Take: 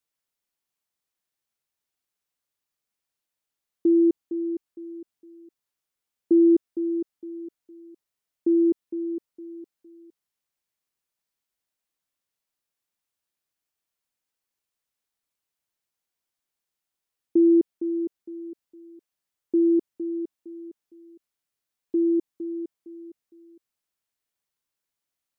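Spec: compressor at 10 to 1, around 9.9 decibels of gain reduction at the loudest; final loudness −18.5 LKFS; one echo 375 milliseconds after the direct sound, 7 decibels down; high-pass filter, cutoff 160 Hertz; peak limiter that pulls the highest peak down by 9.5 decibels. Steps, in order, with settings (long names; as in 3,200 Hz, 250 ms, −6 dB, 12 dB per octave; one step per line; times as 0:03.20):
high-pass filter 160 Hz
downward compressor 10 to 1, threshold −25 dBFS
brickwall limiter −25.5 dBFS
single-tap delay 375 ms −7 dB
level +14.5 dB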